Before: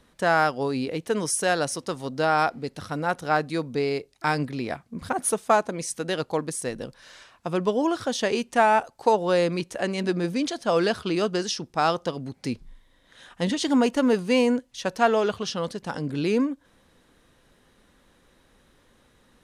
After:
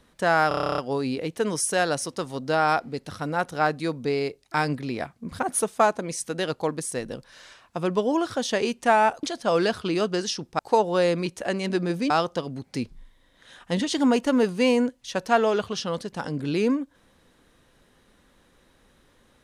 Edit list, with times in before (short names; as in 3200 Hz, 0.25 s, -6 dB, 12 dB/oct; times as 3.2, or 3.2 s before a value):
0.48 stutter 0.03 s, 11 plays
10.44–11.8 move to 8.93